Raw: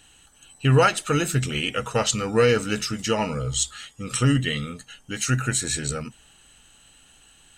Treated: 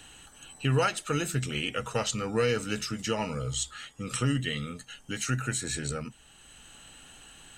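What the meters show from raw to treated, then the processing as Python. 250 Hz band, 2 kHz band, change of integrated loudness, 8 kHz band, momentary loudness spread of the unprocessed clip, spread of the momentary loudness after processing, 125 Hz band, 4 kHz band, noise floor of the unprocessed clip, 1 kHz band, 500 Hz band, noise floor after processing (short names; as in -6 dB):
-6.5 dB, -6.5 dB, -7.5 dB, -7.5 dB, 12 LU, 22 LU, -7.5 dB, -6.0 dB, -55 dBFS, -7.5 dB, -7.5 dB, -56 dBFS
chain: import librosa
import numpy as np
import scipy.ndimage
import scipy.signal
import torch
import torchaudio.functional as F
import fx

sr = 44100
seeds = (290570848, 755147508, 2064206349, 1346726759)

y = fx.band_squash(x, sr, depth_pct=40)
y = y * 10.0 ** (-6.5 / 20.0)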